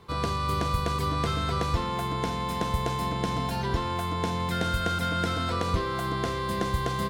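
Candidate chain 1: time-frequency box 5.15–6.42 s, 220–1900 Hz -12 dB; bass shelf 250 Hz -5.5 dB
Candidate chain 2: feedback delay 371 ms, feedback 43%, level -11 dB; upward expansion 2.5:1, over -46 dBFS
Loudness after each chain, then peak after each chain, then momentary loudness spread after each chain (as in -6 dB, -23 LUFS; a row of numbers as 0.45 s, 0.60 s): -30.5 LUFS, -36.0 LUFS; -15.5 dBFS, -14.0 dBFS; 5 LU, 6 LU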